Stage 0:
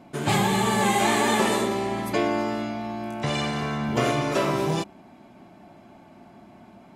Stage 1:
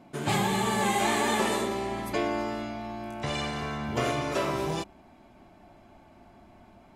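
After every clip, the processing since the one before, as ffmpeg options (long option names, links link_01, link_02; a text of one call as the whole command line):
ffmpeg -i in.wav -af "asubboost=boost=7.5:cutoff=60,volume=-4dB" out.wav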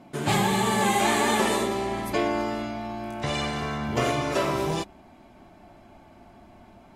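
ffmpeg -i in.wav -af "volume=3.5dB" -ar 48000 -c:a libvorbis -b:a 64k out.ogg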